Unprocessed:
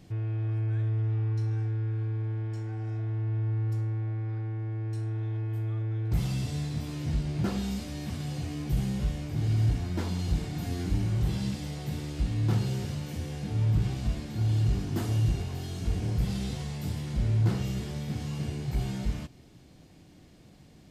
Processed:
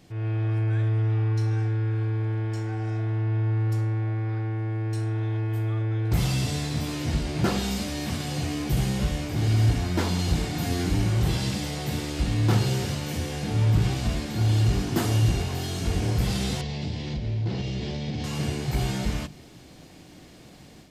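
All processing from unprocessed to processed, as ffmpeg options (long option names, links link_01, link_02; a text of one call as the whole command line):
ffmpeg -i in.wav -filter_complex "[0:a]asettb=1/sr,asplit=3[link_01][link_02][link_03];[link_01]atrim=end=16.614[link_04];[link_02]atrim=start=16.61:end=18.24,asetpts=PTS-STARTPTS,afade=type=in:duration=0.004:curve=qsin,afade=type=out:start_time=1.626:duration=0.004:curve=qsin,lowpass=frequency=5100:width=0.5412,lowpass=frequency=5100:width=1.3066,equalizer=frequency=1300:width=1.6:gain=-11,acompressor=threshold=-31dB:ratio=3:attack=3.2:release=140:knee=1:detection=peak[link_05];[link_03]atrim=start=18.236[link_06];[link_04][link_05]acrossfade=duration=0.004:curve1=hsin:curve2=qsin[link_07];[link_07][link_06]acrossfade=duration=0.004:curve1=qsin:curve2=hsin,lowshelf=frequency=300:gain=-6.5,bandreject=frequency=50:width_type=h:width=6,bandreject=frequency=100:width_type=h:width=6,bandreject=frequency=150:width_type=h:width=6,bandreject=frequency=200:width_type=h:width=6,dynaudnorm=framelen=130:gausssize=3:maxgain=7.5dB,volume=3dB" out.wav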